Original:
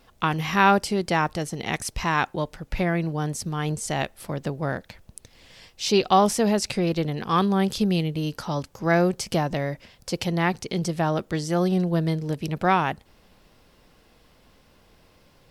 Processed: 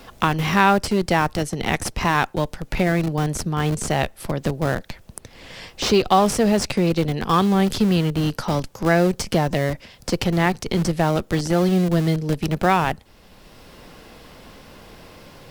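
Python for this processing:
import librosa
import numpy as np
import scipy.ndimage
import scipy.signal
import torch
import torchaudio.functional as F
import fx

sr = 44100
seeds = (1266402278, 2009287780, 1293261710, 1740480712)

p1 = fx.schmitt(x, sr, flips_db=-24.5)
p2 = x + (p1 * librosa.db_to_amplitude(-7.0))
p3 = fx.band_squash(p2, sr, depth_pct=40)
y = p3 * librosa.db_to_amplitude(2.5)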